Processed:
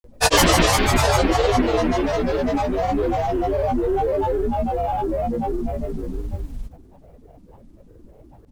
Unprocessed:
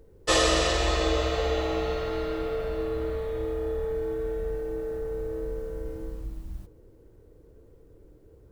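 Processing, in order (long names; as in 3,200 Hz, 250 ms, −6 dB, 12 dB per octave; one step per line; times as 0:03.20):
repeating echo 65 ms, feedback 45%, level −14.5 dB
granular cloud, pitch spread up and down by 12 semitones
level +8 dB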